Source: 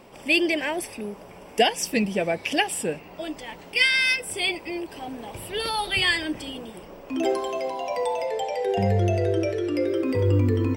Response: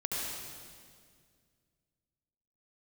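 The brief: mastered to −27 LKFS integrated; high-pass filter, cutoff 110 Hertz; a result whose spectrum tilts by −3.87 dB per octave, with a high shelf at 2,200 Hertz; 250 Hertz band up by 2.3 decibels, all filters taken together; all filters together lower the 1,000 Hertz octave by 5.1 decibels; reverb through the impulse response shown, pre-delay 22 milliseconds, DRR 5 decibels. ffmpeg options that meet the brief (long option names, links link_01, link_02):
-filter_complex "[0:a]highpass=110,equalizer=frequency=250:width_type=o:gain=4,equalizer=frequency=1000:width_type=o:gain=-7.5,highshelf=frequency=2200:gain=-4,asplit=2[link_01][link_02];[1:a]atrim=start_sample=2205,adelay=22[link_03];[link_02][link_03]afir=irnorm=-1:irlink=0,volume=-10dB[link_04];[link_01][link_04]amix=inputs=2:normalize=0,volume=-2dB"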